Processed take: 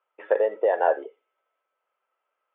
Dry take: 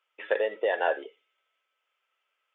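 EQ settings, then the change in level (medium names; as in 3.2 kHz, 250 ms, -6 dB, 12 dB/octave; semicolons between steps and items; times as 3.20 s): band-pass filter 990 Hz, Q 1; tilt shelf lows +9.5 dB; +5.0 dB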